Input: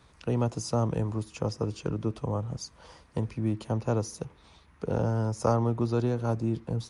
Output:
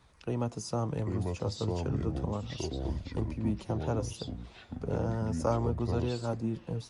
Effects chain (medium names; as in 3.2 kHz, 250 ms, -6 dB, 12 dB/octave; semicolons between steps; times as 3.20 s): ever faster or slower copies 705 ms, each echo -5 st, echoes 2; flange 0.34 Hz, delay 0.9 ms, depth 9.4 ms, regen +64%